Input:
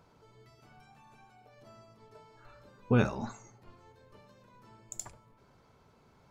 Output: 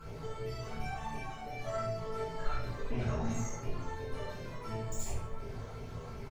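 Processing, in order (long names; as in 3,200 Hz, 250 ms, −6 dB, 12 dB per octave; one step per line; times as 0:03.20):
downward compressor 6 to 1, threshold −44 dBFS, peak gain reduction 22 dB
tube saturation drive 51 dB, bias 0.55
all-pass phaser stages 12, 2.8 Hz, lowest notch 230–1,500 Hz
ambience of single reflections 18 ms −4.5 dB, 68 ms −6 dB
rectangular room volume 50 cubic metres, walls mixed, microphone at 2.3 metres
level +8.5 dB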